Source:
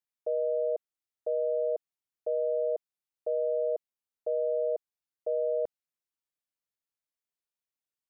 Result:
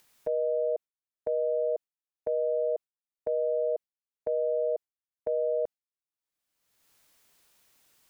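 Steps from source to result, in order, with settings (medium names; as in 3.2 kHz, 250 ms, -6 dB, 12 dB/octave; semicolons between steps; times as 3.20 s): gate with hold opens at -27 dBFS; upward compressor, threshold -32 dBFS; trim +1 dB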